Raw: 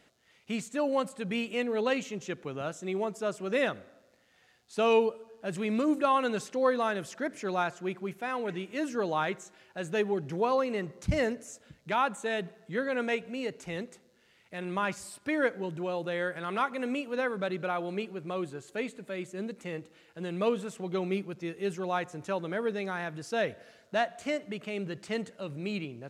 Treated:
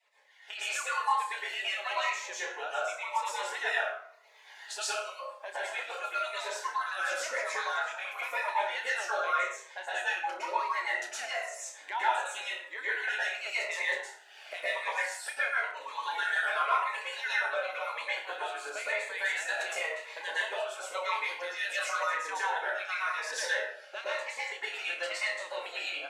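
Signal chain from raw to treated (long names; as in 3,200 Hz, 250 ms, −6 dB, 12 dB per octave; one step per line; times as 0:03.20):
harmonic-percussive split with one part muted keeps percussive
camcorder AGC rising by 22 dB per second
inverse Chebyshev high-pass filter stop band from 160 Hz, stop band 70 dB
high-shelf EQ 3,700 Hz −12 dB
notch filter 1,200 Hz, Q 9.8
flutter between parallel walls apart 5.2 metres, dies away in 0.24 s
dense smooth reverb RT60 0.62 s, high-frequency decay 0.65×, pre-delay 100 ms, DRR −8.5 dB
phaser whose notches keep moving one way falling 0.95 Hz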